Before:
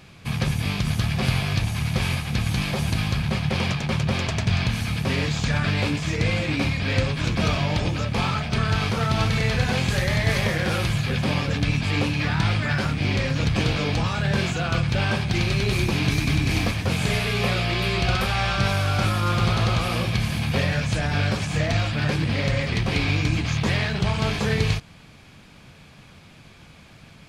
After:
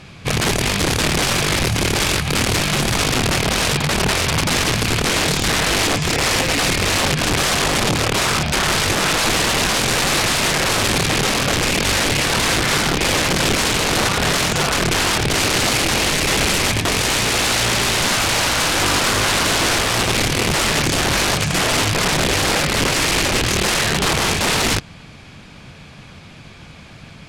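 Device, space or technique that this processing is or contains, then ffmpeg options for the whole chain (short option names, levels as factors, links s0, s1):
overflowing digital effects unit: -af "aeval=exprs='(mod(10*val(0)+1,2)-1)/10':c=same,lowpass=10000,volume=2.51"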